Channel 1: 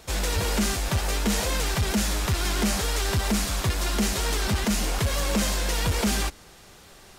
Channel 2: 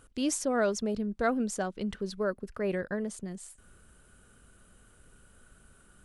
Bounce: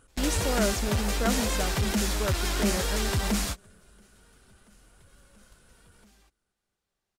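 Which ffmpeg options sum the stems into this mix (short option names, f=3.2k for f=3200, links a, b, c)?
-filter_complex "[0:a]volume=-2.5dB[a];[1:a]volume=-1.5dB,asplit=3[b][c][d];[c]volume=-20dB[e];[d]apad=whole_len=316645[f];[a][f]sidechaingate=range=-33dB:threshold=-50dB:ratio=16:detection=peak[g];[e]aecho=0:1:237|474|711|948|1185|1422|1659|1896:1|0.54|0.292|0.157|0.085|0.0459|0.0248|0.0134[h];[g][b][h]amix=inputs=3:normalize=0"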